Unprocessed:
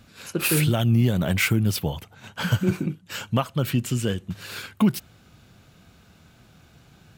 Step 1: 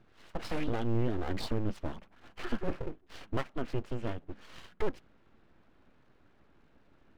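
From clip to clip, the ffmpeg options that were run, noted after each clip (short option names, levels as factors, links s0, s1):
-af "lowpass=1800,aeval=exprs='abs(val(0))':c=same,volume=0.398"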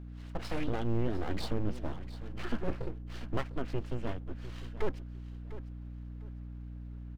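-af "aeval=exprs='val(0)+0.00794*(sin(2*PI*60*n/s)+sin(2*PI*2*60*n/s)/2+sin(2*PI*3*60*n/s)/3+sin(2*PI*4*60*n/s)/4+sin(2*PI*5*60*n/s)/5)':c=same,aecho=1:1:701|1402|2103:0.178|0.0445|0.0111,volume=0.891"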